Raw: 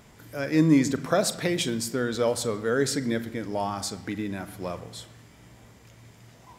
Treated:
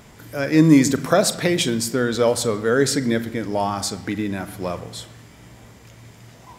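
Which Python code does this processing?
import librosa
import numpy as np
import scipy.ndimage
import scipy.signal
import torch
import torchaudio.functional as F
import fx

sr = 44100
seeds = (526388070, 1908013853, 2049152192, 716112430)

y = fx.high_shelf(x, sr, hz=7600.0, db=8.0, at=(0.64, 1.13))
y = y * 10.0 ** (6.5 / 20.0)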